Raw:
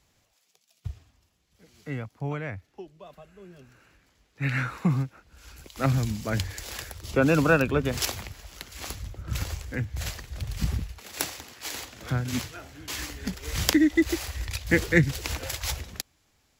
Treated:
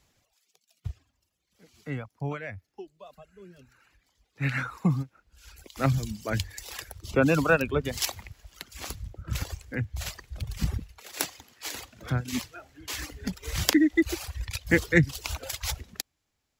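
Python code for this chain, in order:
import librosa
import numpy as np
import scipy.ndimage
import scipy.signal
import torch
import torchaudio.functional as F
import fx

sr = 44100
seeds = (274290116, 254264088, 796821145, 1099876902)

y = fx.dereverb_blind(x, sr, rt60_s=1.4)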